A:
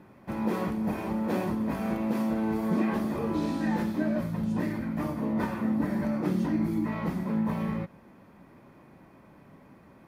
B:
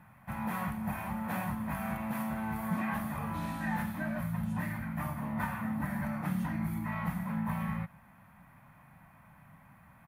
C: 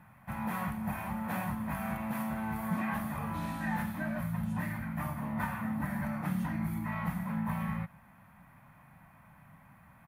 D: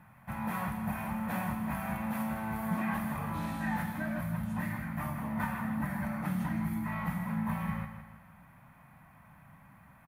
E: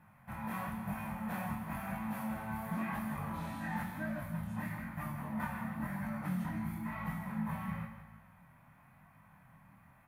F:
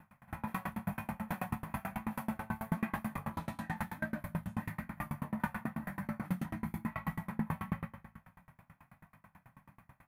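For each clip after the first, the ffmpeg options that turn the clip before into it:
-af "firequalizer=gain_entry='entry(150,0);entry(370,-25);entry(710,-2);entry(1700,2);entry(4900,-11);entry(11000,6)':delay=0.05:min_phase=1"
-af anull
-af "aecho=1:1:160|320|480|640|800:0.335|0.144|0.0619|0.0266|0.0115"
-af "flanger=delay=19:depth=7.3:speed=0.98,volume=-1.5dB"
-af "aeval=exprs='val(0)*pow(10,-30*if(lt(mod(9.2*n/s,1),2*abs(9.2)/1000),1-mod(9.2*n/s,1)/(2*abs(9.2)/1000),(mod(9.2*n/s,1)-2*abs(9.2)/1000)/(1-2*abs(9.2)/1000))/20)':c=same,volume=8dB"

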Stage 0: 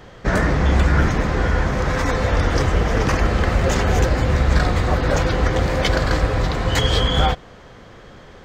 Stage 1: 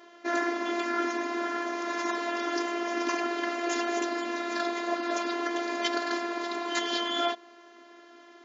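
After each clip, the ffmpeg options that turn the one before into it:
-af "afftfilt=real='hypot(re,im)*cos(PI*b)':imag='0':win_size=512:overlap=0.75,afftfilt=real='re*between(b*sr/4096,220,7400)':imag='im*between(b*sr/4096,220,7400)':win_size=4096:overlap=0.75,volume=-4dB"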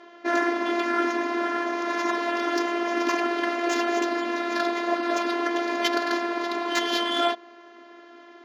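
-af "adynamicsmooth=sensitivity=3:basefreq=4.8k,volume=5dB"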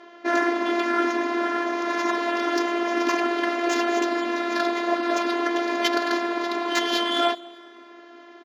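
-af "aecho=1:1:200|400|600:0.0668|0.0348|0.0181,volume=1.5dB"

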